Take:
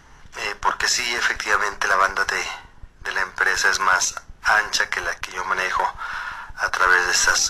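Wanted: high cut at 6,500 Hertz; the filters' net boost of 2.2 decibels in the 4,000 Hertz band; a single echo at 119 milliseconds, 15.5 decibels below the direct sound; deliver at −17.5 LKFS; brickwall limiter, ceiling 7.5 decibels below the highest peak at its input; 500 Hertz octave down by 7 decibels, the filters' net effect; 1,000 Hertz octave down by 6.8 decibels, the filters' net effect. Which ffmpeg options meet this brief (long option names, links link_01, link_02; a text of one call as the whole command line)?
ffmpeg -i in.wav -af "lowpass=6500,equalizer=frequency=500:width_type=o:gain=-6.5,equalizer=frequency=1000:width_type=o:gain=-8.5,equalizer=frequency=4000:width_type=o:gain=5,alimiter=limit=-12.5dB:level=0:latency=1,aecho=1:1:119:0.168,volume=7.5dB" out.wav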